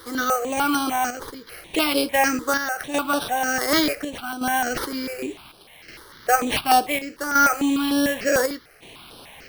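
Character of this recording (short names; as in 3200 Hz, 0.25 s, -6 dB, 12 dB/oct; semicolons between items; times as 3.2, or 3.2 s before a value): a quantiser's noise floor 8-bit, dither triangular; chopped level 0.68 Hz, depth 60%, duty 75%; aliases and images of a low sample rate 7300 Hz, jitter 0%; notches that jump at a steady rate 6.7 Hz 690–6900 Hz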